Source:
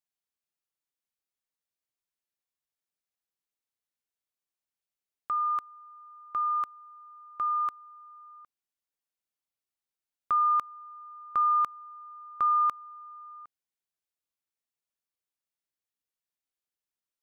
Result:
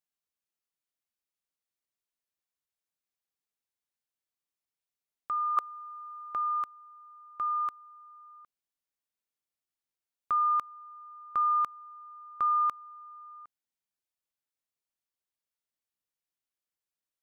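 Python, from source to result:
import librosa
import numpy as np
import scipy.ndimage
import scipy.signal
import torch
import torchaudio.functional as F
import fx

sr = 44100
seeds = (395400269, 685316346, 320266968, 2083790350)

y = fx.curve_eq(x, sr, hz=(150.0, 530.0, 1600.0), db=(0, 13, 7), at=(5.57, 6.35))
y = y * 10.0 ** (-2.0 / 20.0)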